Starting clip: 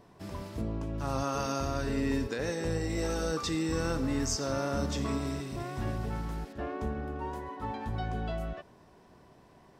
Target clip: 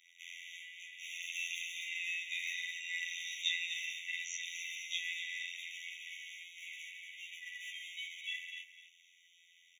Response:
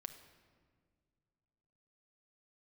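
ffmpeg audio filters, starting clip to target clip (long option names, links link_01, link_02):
-filter_complex "[0:a]afftfilt=real='hypot(re,im)*cos(PI*b)':imag='0':win_size=2048:overlap=0.75,flanger=delay=22.5:depth=5.8:speed=0.69,acrossover=split=5100[link_01][link_02];[link_02]acompressor=threshold=-60dB:ratio=4:attack=1:release=60[link_03];[link_01][link_03]amix=inputs=2:normalize=0,aeval=exprs='0.0841*(cos(1*acos(clip(val(0)/0.0841,-1,1)))-cos(1*PI/2))+0.000596*(cos(2*acos(clip(val(0)/0.0841,-1,1)))-cos(2*PI/2))':channel_layout=same,highshelf=frequency=6400:gain=-10,asplit=2[link_04][link_05];[link_05]acompressor=threshold=-47dB:ratio=16,volume=2dB[link_06];[link_04][link_06]amix=inputs=2:normalize=0,equalizer=frequency=11000:width=0.74:gain=-9,aecho=1:1:251|502|753:0.335|0.0971|0.0282,acrossover=split=230|2500[link_07][link_08][link_09];[link_08]aeval=exprs='sgn(val(0))*max(abs(val(0))-0.00251,0)':channel_layout=same[link_10];[link_07][link_10][link_09]amix=inputs=3:normalize=0,afftfilt=real='re*eq(mod(floor(b*sr/1024/1900),2),1)':imag='im*eq(mod(floor(b*sr/1024/1900),2),1)':win_size=1024:overlap=0.75,volume=15.5dB"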